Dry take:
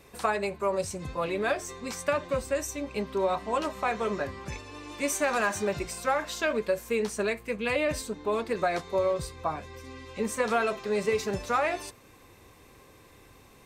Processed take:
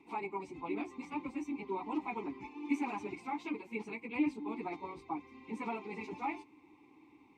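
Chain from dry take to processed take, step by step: vowel filter u; plain phase-vocoder stretch 0.54×; gain +8.5 dB

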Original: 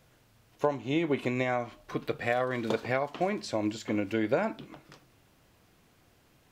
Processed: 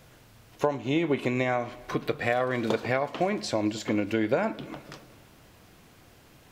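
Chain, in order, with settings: compressor 1.5:1, threshold -41 dBFS, peak gain reduction 7.5 dB; analogue delay 0.11 s, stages 4096, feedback 70%, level -22 dB; gain +8.5 dB

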